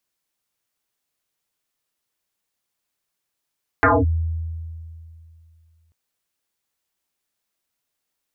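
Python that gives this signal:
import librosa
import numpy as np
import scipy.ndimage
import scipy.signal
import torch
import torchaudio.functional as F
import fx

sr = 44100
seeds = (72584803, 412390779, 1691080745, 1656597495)

y = fx.fm2(sr, length_s=2.09, level_db=-10.5, carrier_hz=81.7, ratio=2.3, index=10.0, index_s=0.22, decay_s=2.58, shape='linear')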